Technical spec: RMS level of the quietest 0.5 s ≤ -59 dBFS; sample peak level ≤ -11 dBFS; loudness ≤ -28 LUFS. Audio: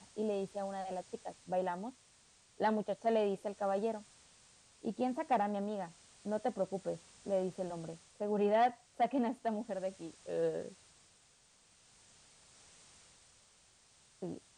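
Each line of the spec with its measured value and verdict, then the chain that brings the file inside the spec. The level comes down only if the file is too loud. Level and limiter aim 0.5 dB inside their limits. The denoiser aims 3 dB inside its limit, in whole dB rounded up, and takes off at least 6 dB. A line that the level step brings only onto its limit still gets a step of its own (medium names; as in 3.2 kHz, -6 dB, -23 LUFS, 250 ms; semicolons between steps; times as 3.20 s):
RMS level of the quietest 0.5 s -67 dBFS: pass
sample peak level -21.5 dBFS: pass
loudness -37.0 LUFS: pass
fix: none needed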